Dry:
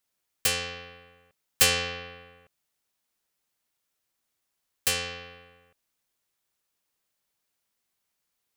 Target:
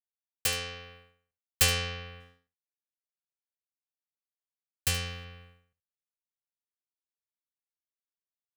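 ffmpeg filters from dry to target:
ffmpeg -i in.wav -filter_complex "[0:a]asubboost=boost=8.5:cutoff=120,asettb=1/sr,asplit=3[link_01][link_02][link_03];[link_01]atrim=end=2.204[link_04];[link_02]atrim=start=2.2:end=5.25,asetpts=PTS-STARTPTS,afade=type=in:duration=0.004:curve=qsin,afade=type=out:start_time=3.046:duration=0.004:curve=qsin,aeval=exprs='sgn(val(0))*max(abs(val(0))-0.00141,0)':channel_layout=same[link_05];[link_03]atrim=start=5.246[link_06];[link_04][link_05]acrossfade=duration=0.004:curve1=hsin:curve2=qsin[link_07];[link_07][link_06]acrossfade=duration=0.004:curve1=qsin:curve2=hsin,agate=range=-33dB:threshold=-46dB:ratio=3:detection=peak,asplit=2[link_08][link_09];[link_09]aecho=0:1:73:0.178[link_10];[link_08][link_10]amix=inputs=2:normalize=0,volume=-3.5dB" out.wav

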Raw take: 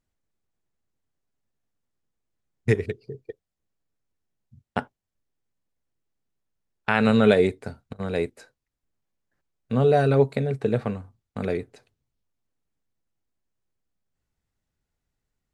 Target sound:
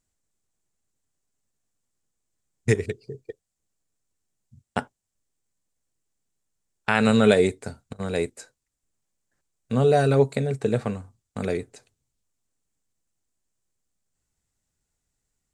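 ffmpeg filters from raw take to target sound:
ffmpeg -i in.wav -af "equalizer=frequency=7700:width=1.2:gain=13.5" out.wav

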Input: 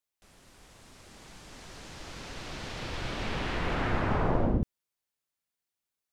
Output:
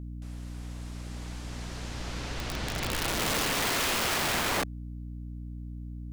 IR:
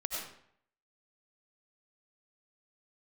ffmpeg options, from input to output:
-af "adynamicequalizer=threshold=0.00562:dfrequency=200:dqfactor=1.5:tfrequency=200:tqfactor=1.5:attack=5:release=100:ratio=0.375:range=3.5:mode=boostabove:tftype=bell,aeval=exprs='val(0)+0.00794*(sin(2*PI*60*n/s)+sin(2*PI*2*60*n/s)/2+sin(2*PI*3*60*n/s)/3+sin(2*PI*4*60*n/s)/4+sin(2*PI*5*60*n/s)/5)':channel_layout=same,aeval=exprs='(mod(25.1*val(0)+1,2)-1)/25.1':channel_layout=same,volume=4.5dB"

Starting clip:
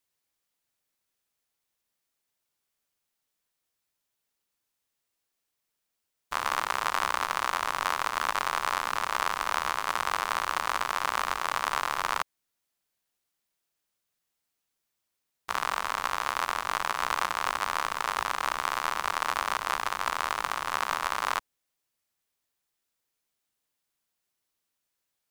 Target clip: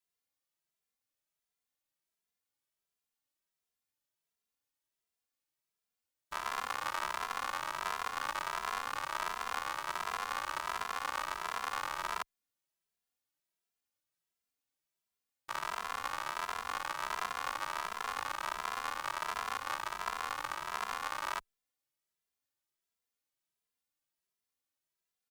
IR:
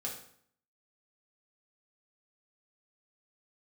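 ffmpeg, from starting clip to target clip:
-filter_complex "[0:a]asplit=2[link_01][link_02];[link_02]adelay=2.6,afreqshift=1.4[link_03];[link_01][link_03]amix=inputs=2:normalize=1,volume=-5dB"

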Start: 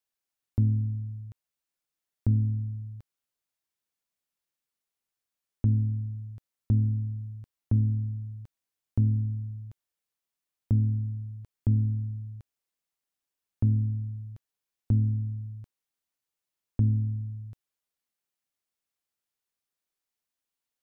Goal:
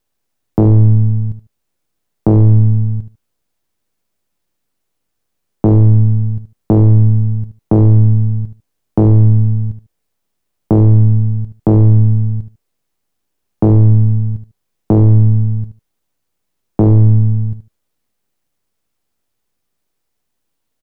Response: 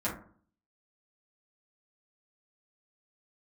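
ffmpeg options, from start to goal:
-af "aeval=exprs='if(lt(val(0),0),0.251*val(0),val(0))':channel_layout=same,tiltshelf=frequency=670:gain=6,aeval=exprs='0.316*sin(PI/2*2.82*val(0)/0.316)':channel_layout=same,aecho=1:1:75|150:0.266|0.0452,volume=6.5dB"

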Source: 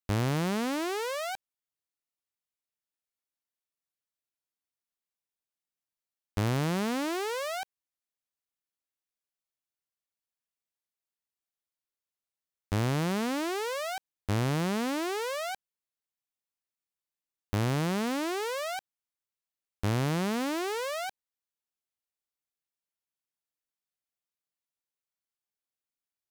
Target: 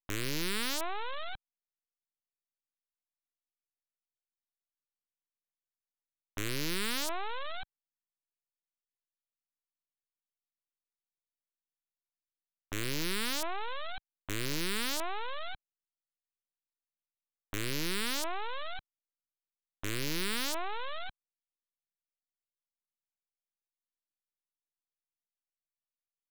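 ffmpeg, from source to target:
ffmpeg -i in.wav -af "highpass=frequency=160:width=0.5412,highpass=frequency=160:width=1.3066,highshelf=frequency=2600:gain=-8,aresample=8000,aeval=exprs='abs(val(0))':channel_layout=same,aresample=44100,acontrast=26,anlmdn=0.00631,aemphasis=mode=production:type=cd,aeval=exprs='(mod(7.5*val(0)+1,2)-1)/7.5':channel_layout=same,volume=-6dB" out.wav

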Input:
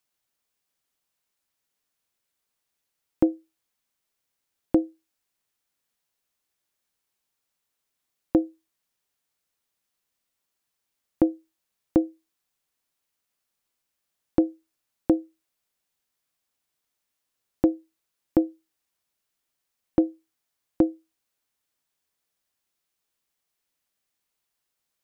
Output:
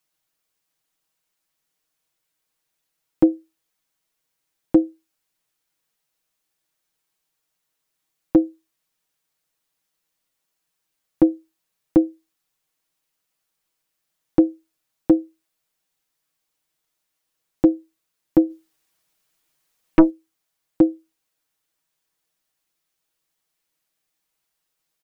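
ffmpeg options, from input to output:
ffmpeg -i in.wav -filter_complex "[0:a]asplit=3[link_01][link_02][link_03];[link_01]afade=type=out:start_time=18.49:duration=0.02[link_04];[link_02]aeval=exprs='0.447*(cos(1*acos(clip(val(0)/0.447,-1,1)))-cos(1*PI/2))+0.0891*(cos(5*acos(clip(val(0)/0.447,-1,1)))-cos(5*PI/2))+0.0631*(cos(6*acos(clip(val(0)/0.447,-1,1)))-cos(6*PI/2))':channel_layout=same,afade=type=in:start_time=18.49:duration=0.02,afade=type=out:start_time=20.09:duration=0.02[link_05];[link_03]afade=type=in:start_time=20.09:duration=0.02[link_06];[link_04][link_05][link_06]amix=inputs=3:normalize=0,aecho=1:1:6.3:0.69,volume=1.5dB" out.wav

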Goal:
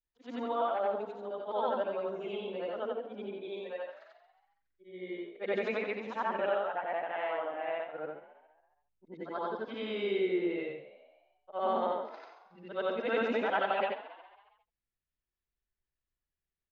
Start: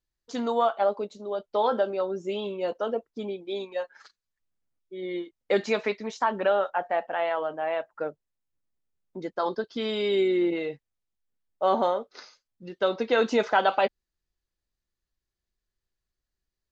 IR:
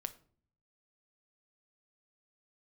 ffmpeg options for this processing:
-filter_complex "[0:a]afftfilt=real='re':imag='-im':win_size=8192:overlap=0.75,highshelf=frequency=3900:width_type=q:width=1.5:gain=-12,asplit=6[link_01][link_02][link_03][link_04][link_05][link_06];[link_02]adelay=137,afreqshift=54,volume=-15.5dB[link_07];[link_03]adelay=274,afreqshift=108,volume=-21dB[link_08];[link_04]adelay=411,afreqshift=162,volume=-26.5dB[link_09];[link_05]adelay=548,afreqshift=216,volume=-32dB[link_10];[link_06]adelay=685,afreqshift=270,volume=-37.6dB[link_11];[link_01][link_07][link_08][link_09][link_10][link_11]amix=inputs=6:normalize=0,volume=-3dB"

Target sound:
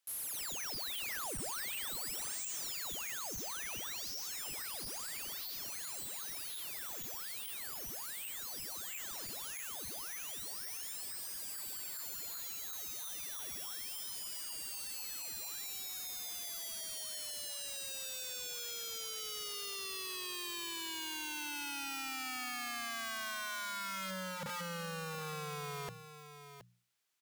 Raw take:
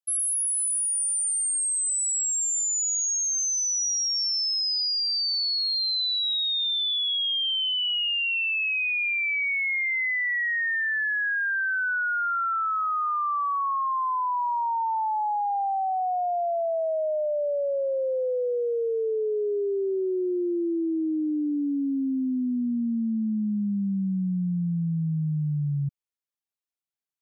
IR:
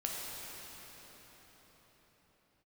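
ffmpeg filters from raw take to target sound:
-filter_complex "[0:a]equalizer=frequency=740:width=0.99:gain=-3.5,bandreject=frequency=60:width_type=h:width=6,bandreject=frequency=120:width_type=h:width=6,bandreject=frequency=180:width_type=h:width=6,acompressor=threshold=-34dB:ratio=20,asplit=2[link_01][link_02];[link_02]highpass=frequency=720:poles=1,volume=10dB,asoftclip=type=tanh:threshold=-32.5dB[link_03];[link_01][link_03]amix=inputs=2:normalize=0,lowpass=frequency=7100:poles=1,volume=-6dB,aeval=exprs='(mod(188*val(0)+1,2)-1)/188':channel_layout=same,asplit=2[link_04][link_05];[link_05]aecho=0:1:721:0.282[link_06];[link_04][link_06]amix=inputs=2:normalize=0,volume=8dB"

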